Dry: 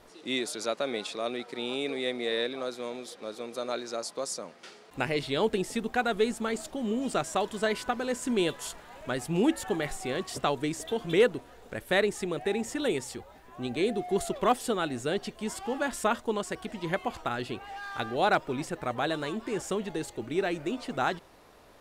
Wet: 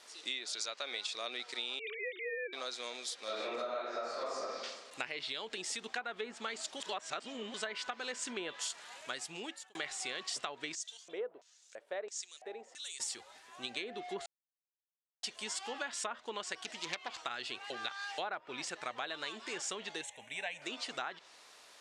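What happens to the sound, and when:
0.56–1.12 s: bass shelf 240 Hz -8 dB
1.79–2.53 s: formants replaced by sine waves
3.24–4.41 s: reverb throw, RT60 1.2 s, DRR -11 dB
5.22–5.84 s: compression 2:1, threshold -31 dBFS
6.80–7.54 s: reverse
8.92–9.75 s: fade out
10.75–13.00 s: LFO band-pass square 1.5 Hz 550–6400 Hz
14.26–15.23 s: mute
16.60–17.13 s: self-modulated delay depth 0.27 ms
17.70–18.18 s: reverse
20.01–20.62 s: static phaser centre 1.3 kHz, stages 6
whole clip: low-pass that closes with the level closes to 1.5 kHz, closed at -22 dBFS; frequency weighting ITU-R 468; compression 10:1, threshold -31 dBFS; trim -4 dB

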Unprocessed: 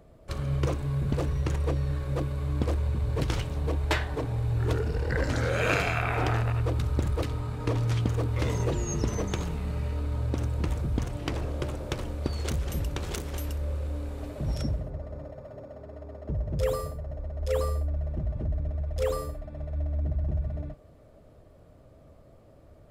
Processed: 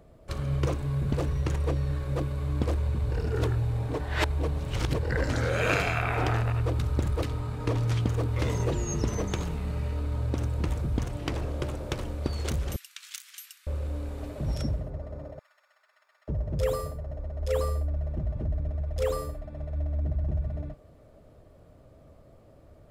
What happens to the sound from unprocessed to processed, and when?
3.12–5.03 s: reverse
12.76–13.67 s: Bessel high-pass 2.5 kHz, order 8
15.39–16.28 s: high-pass 1.4 kHz 24 dB/octave

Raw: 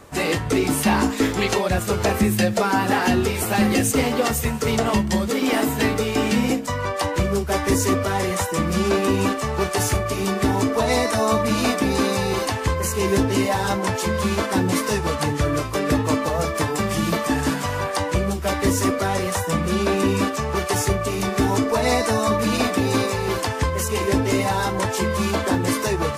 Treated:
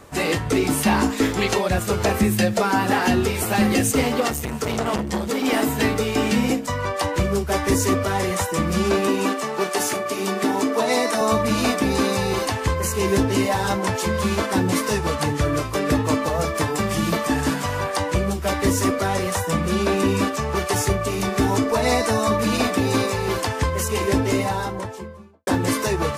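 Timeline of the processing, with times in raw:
4.20–5.45 s: transformer saturation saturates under 690 Hz
9.08–11.21 s: high-pass 200 Hz 24 dB/octave
24.17–25.47 s: studio fade out

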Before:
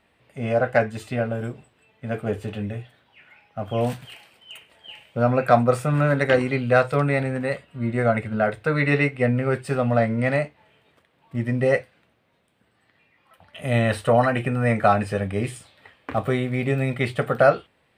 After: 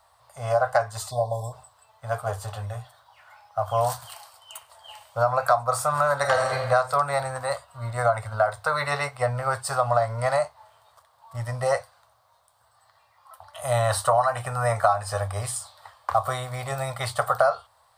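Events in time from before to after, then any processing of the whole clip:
1.11–1.53 s: spectral selection erased 1.1–3.3 kHz
6.15–6.58 s: reverb throw, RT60 1.3 s, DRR 2.5 dB
whole clip: FFT filter 110 Hz 0 dB, 180 Hz -22 dB, 330 Hz -27 dB, 620 Hz +5 dB, 1.1 kHz +13 dB, 1.7 kHz -2 dB, 2.5 kHz -11 dB, 4.5 kHz +10 dB, 8.9 kHz +12 dB; compression 6:1, threshold -17 dBFS

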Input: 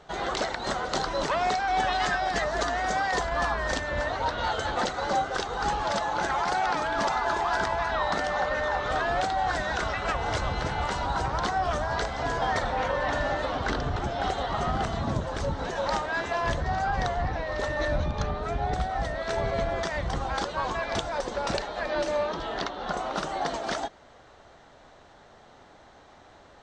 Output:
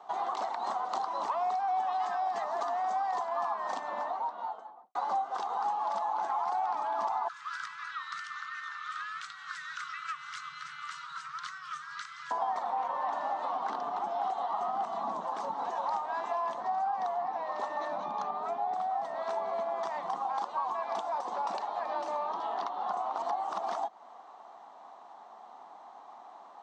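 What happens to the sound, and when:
3.65–4.95 s: studio fade out
7.28–12.31 s: Chebyshev band-stop 150–1300 Hz, order 5
23.18–23.58 s: reverse
whole clip: steep high-pass 190 Hz 48 dB/octave; high-order bell 910 Hz +16 dB 1 oct; compression 3:1, threshold -23 dBFS; trim -9 dB

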